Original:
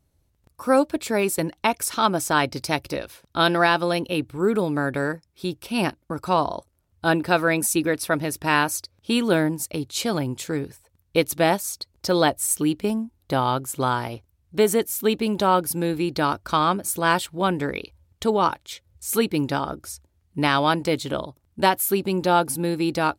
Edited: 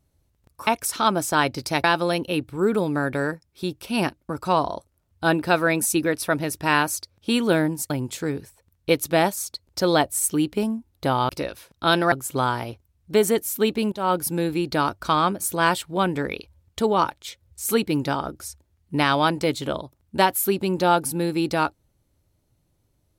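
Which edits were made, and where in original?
0.67–1.65 s: delete
2.82–3.65 s: move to 13.56 s
9.71–10.17 s: delete
15.36–15.61 s: fade in, from -21 dB

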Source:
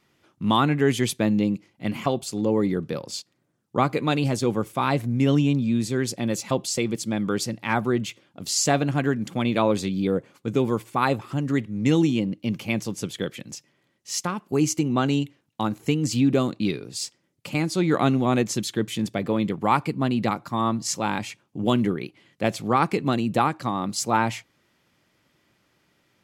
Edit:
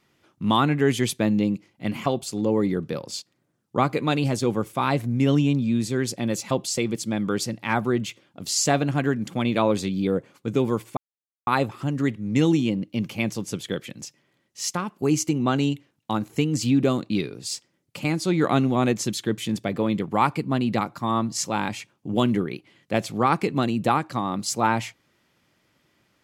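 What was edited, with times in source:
10.97 s: insert silence 0.50 s

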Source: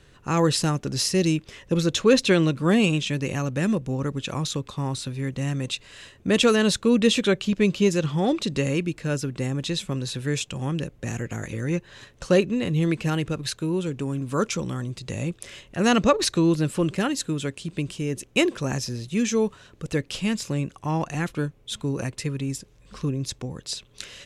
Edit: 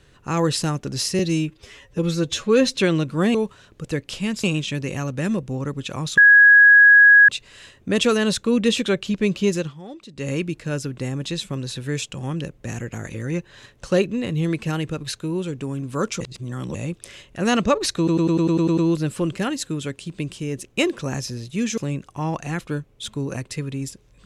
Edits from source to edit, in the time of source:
1.19–2.24 s: stretch 1.5×
4.56–5.67 s: bleep 1.66 kHz -7 dBFS
7.96–8.70 s: dip -15.5 dB, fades 0.17 s
14.59–15.13 s: reverse
16.36 s: stutter 0.10 s, 9 plays
19.36–20.45 s: move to 2.82 s

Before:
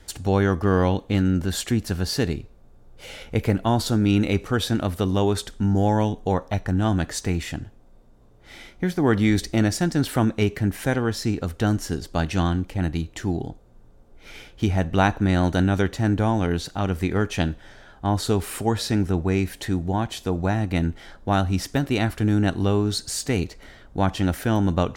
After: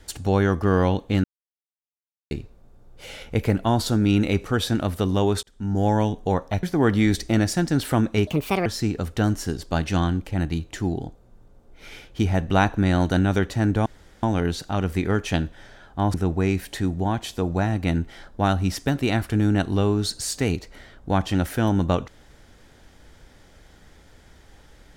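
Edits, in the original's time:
1.24–2.31 s: mute
5.43–5.88 s: fade in
6.63–8.87 s: delete
10.51–11.09 s: speed 149%
16.29 s: insert room tone 0.37 s
18.20–19.02 s: delete

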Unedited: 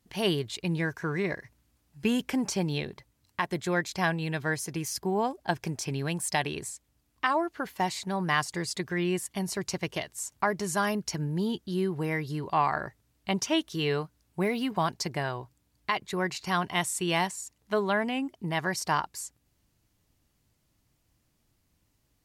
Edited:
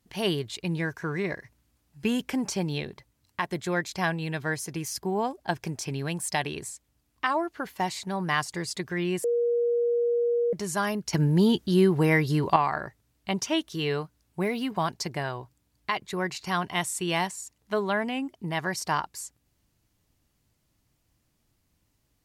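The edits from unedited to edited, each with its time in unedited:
9.24–10.53 s: bleep 475 Hz -21.5 dBFS
11.13–12.56 s: gain +8.5 dB

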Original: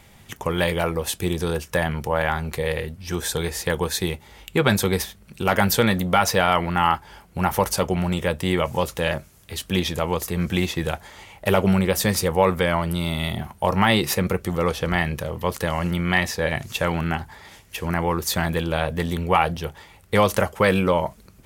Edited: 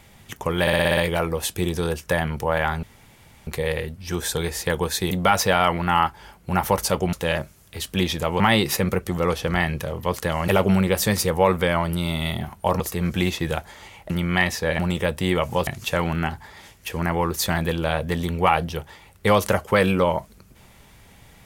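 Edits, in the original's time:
0.61 s: stutter 0.06 s, 7 plays
2.47 s: insert room tone 0.64 s
4.11–5.99 s: delete
8.01–8.89 s: move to 16.55 s
10.16–11.46 s: swap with 13.78–15.86 s

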